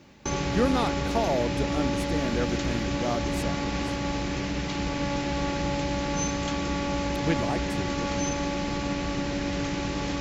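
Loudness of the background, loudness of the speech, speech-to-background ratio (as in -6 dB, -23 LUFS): -29.0 LUFS, -31.0 LUFS, -2.0 dB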